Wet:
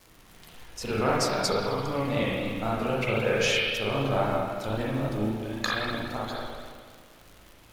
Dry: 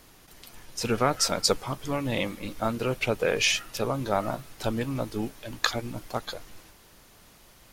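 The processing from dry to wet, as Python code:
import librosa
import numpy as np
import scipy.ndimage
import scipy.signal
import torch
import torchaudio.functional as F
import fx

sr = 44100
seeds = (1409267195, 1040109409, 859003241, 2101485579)

y = fx.rev_spring(x, sr, rt60_s=1.7, pass_ms=(37, 56), chirp_ms=30, drr_db=-6.5)
y = fx.vibrato(y, sr, rate_hz=3.8, depth_cents=45.0)
y = fx.dmg_crackle(y, sr, seeds[0], per_s=140.0, level_db=-34.0)
y = F.gain(torch.from_numpy(y), -6.0).numpy()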